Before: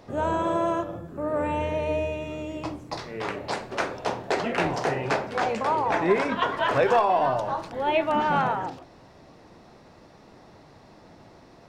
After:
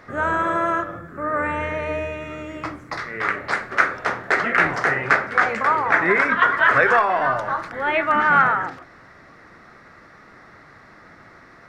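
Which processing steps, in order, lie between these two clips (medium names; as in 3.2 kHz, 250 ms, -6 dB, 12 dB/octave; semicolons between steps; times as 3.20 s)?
high-order bell 1.6 kHz +14.5 dB 1.1 oct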